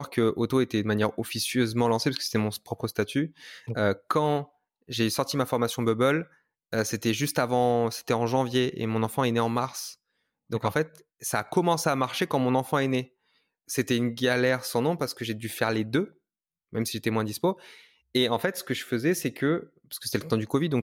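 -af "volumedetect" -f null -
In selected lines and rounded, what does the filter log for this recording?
mean_volume: -27.4 dB
max_volume: -11.1 dB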